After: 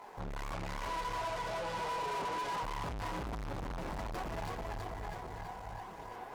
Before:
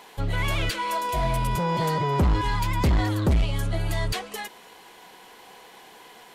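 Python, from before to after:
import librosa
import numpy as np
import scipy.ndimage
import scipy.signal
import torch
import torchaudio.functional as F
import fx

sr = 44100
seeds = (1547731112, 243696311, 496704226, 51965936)

y = scipy.ndimage.median_filter(x, 15, mode='constant')
y = fx.bandpass_edges(y, sr, low_hz=410.0, high_hz=7100.0, at=(0.52, 2.63))
y = fx.echo_feedback(y, sr, ms=328, feedback_pct=58, wet_db=-3.0)
y = fx.chorus_voices(y, sr, voices=4, hz=0.59, base_ms=21, depth_ms=4.2, mix_pct=55)
y = fx.tube_stage(y, sr, drive_db=41.0, bias=0.5)
y = fx.peak_eq(y, sr, hz=850.0, db=5.5, octaves=1.2)
y = F.gain(torch.from_numpy(y), 2.0).numpy()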